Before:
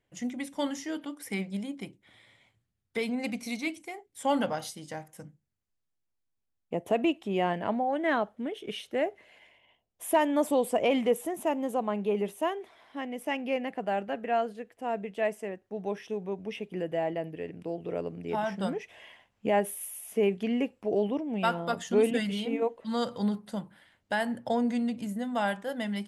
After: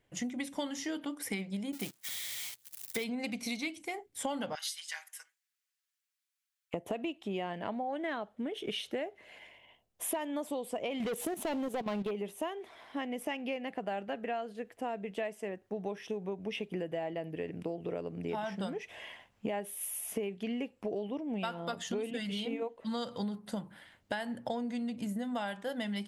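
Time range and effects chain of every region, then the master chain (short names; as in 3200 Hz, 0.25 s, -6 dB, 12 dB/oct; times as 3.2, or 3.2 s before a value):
1.72–3.04 switching spikes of -32 dBFS + gate -45 dBFS, range -25 dB
4.55–6.74 HPF 1400 Hz 24 dB/oct + comb 6.1 ms, depth 91%
11–12.11 sample leveller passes 3 + level quantiser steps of 12 dB
whole clip: dynamic EQ 3700 Hz, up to +5 dB, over -49 dBFS, Q 1.2; compressor 10:1, threshold -37 dBFS; gain +4 dB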